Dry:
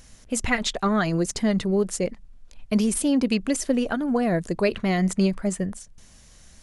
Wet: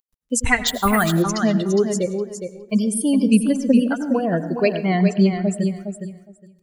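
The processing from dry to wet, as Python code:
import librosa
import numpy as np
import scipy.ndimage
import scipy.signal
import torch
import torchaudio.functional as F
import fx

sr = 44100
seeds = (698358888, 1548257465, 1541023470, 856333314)

y = fx.bin_expand(x, sr, power=1.5)
y = fx.noise_reduce_blind(y, sr, reduce_db=23)
y = fx.bass_treble(y, sr, bass_db=13, treble_db=-12, at=(3.24, 3.79), fade=0.02)
y = fx.rider(y, sr, range_db=5, speed_s=2.0)
y = fx.quant_dither(y, sr, seeds[0], bits=12, dither='none')
y = fx.air_absorb(y, sr, metres=93.0, at=(4.86, 5.51))
y = fx.echo_feedback(y, sr, ms=412, feedback_pct=16, wet_db=-7.5)
y = fx.rev_plate(y, sr, seeds[1], rt60_s=0.67, hf_ratio=0.6, predelay_ms=80, drr_db=13.0)
y = fx.resample_bad(y, sr, factor=4, down='filtered', up='hold', at=(0.67, 1.22))
y = y * 10.0 ** (5.0 / 20.0)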